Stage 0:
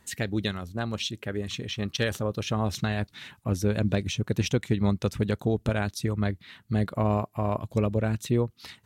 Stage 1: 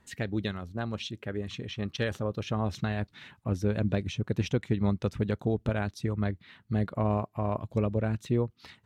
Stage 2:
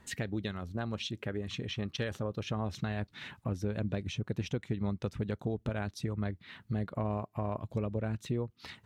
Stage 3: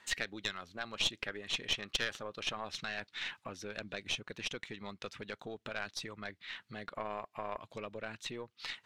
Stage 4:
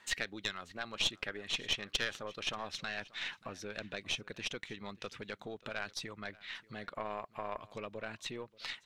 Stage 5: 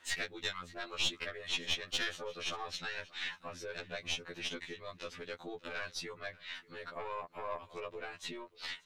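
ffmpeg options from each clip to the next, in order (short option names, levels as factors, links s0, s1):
-af "lowpass=f=2600:p=1,volume=0.75"
-af "acompressor=threshold=0.01:ratio=2.5,volume=1.68"
-af "bandpass=f=3100:t=q:w=0.7:csg=0,aeval=exprs='(tanh(35.5*val(0)+0.75)-tanh(0.75))/35.5':c=same,volume=3.76"
-af "aecho=1:1:584:0.0794"
-af "afftfilt=real='re*2*eq(mod(b,4),0)':imag='im*2*eq(mod(b,4),0)':win_size=2048:overlap=0.75,volume=1.33"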